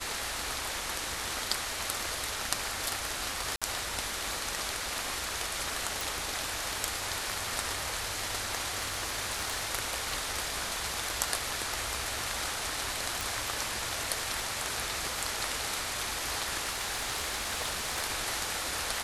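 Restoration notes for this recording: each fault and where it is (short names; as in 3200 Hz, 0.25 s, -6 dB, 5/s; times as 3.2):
3.56–3.62 gap 56 ms
6.01 pop
8.69–9.71 clipped -25.5 dBFS
13.21 pop
16.63–18.04 clipped -26.5 dBFS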